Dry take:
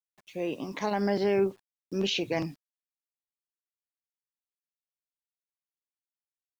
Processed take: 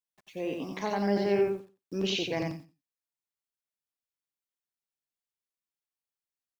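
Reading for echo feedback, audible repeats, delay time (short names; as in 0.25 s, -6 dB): 16%, 2, 89 ms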